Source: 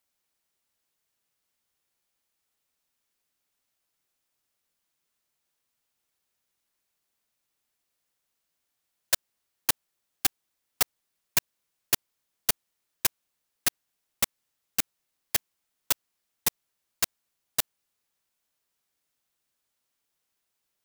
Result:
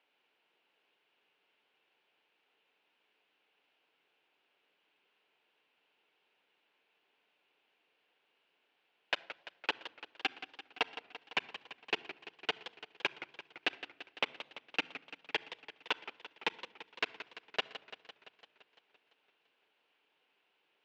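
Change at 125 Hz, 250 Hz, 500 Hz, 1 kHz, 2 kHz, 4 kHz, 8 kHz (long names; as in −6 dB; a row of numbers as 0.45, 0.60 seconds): −15.5, −4.5, +0.5, −1.0, 0.0, −4.5, −30.5 decibels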